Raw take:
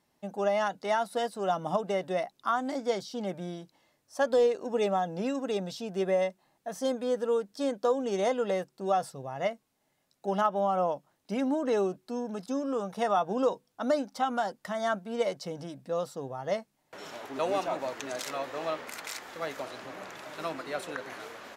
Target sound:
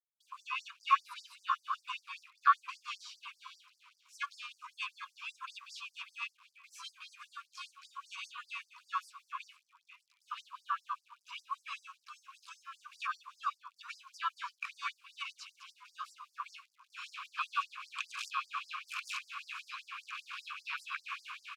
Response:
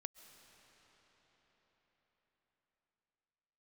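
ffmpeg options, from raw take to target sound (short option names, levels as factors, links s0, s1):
-filter_complex "[0:a]asplit=4[s0][s1][s2][s3];[s1]asetrate=55563,aresample=44100,atempo=0.793701,volume=0.708[s4];[s2]asetrate=58866,aresample=44100,atempo=0.749154,volume=0.224[s5];[s3]asetrate=66075,aresample=44100,atempo=0.66742,volume=0.126[s6];[s0][s4][s5][s6]amix=inputs=4:normalize=0,adynamicequalizer=threshold=0.01:dfrequency=340:dqfactor=2.2:tfrequency=340:tqfactor=2.2:attack=5:release=100:ratio=0.375:range=2:mode=boostabove:tftype=bell,asplit=2[s7][s8];[s8]acompressor=threshold=0.0224:ratio=12,volume=0.75[s9];[s7][s9]amix=inputs=2:normalize=0,asubboost=boost=10.5:cutoff=220,acrusher=bits=8:mix=0:aa=0.000001,asplit=3[s10][s11][s12];[s10]bandpass=f=730:t=q:w=8,volume=1[s13];[s11]bandpass=f=1090:t=q:w=8,volume=0.501[s14];[s12]bandpass=f=2440:t=q:w=8,volume=0.355[s15];[s13][s14][s15]amix=inputs=3:normalize=0,asplit=5[s16][s17][s18][s19][s20];[s17]adelay=472,afreqshift=-68,volume=0.112[s21];[s18]adelay=944,afreqshift=-136,volume=0.0519[s22];[s19]adelay=1416,afreqshift=-204,volume=0.0237[s23];[s20]adelay=1888,afreqshift=-272,volume=0.011[s24];[s16][s21][s22][s23][s24]amix=inputs=5:normalize=0,afftfilt=real='re*gte(b*sr/1024,930*pow(4700/930,0.5+0.5*sin(2*PI*5.1*pts/sr)))':imag='im*gte(b*sr/1024,930*pow(4700/930,0.5+0.5*sin(2*PI*5.1*pts/sr)))':win_size=1024:overlap=0.75,volume=5.01"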